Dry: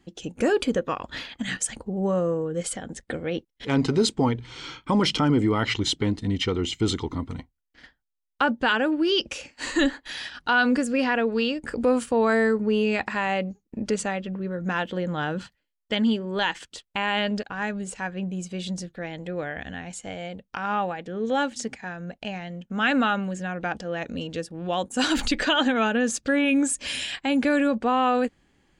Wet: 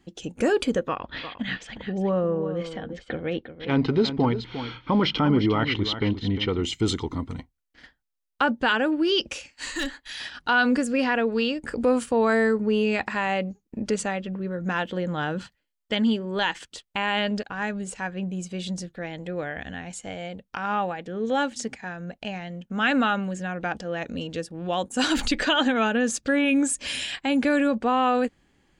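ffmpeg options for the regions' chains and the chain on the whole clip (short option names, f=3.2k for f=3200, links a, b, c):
-filter_complex "[0:a]asettb=1/sr,asplit=3[a][b][c];[a]atrim=end=0.884[d];[b]atrim=start=0.88:end=6.63,asetpts=PTS-STARTPTS,afade=t=in:d=0.004:c=qsin,afade=t=out:st=5.746:d=0.004:c=qsin,lowpass=f=4.1k:w=0.5412,lowpass=f=4.1k:w=1.3066,aecho=1:1:353:0.282,atrim=end_sample=253575[e];[c]atrim=start=6.626[f];[d][e]acrossfade=d=0.004:c1=hsin:c2=qsin[g];[g][f]acrossfade=d=0.004:c1=qsin:c2=hsin,asettb=1/sr,asplit=3[h][i][j];[h]atrim=end=9.394[k];[i]atrim=start=9.39:end=10.2,asetpts=PTS-STARTPTS,afade=t=in:d=0.004:c=qsin,afade=t=out:st=0.806:d=0.004:c=qsin,equalizer=f=340:w=0.32:g=-10,asoftclip=type=hard:threshold=-23dB[l];[j]atrim=start=10.196[m];[k][l]acrossfade=d=0.004:c1=hsin:c2=qsin[n];[n][m]acrossfade=d=0.004:c1=qsin:c2=hsin"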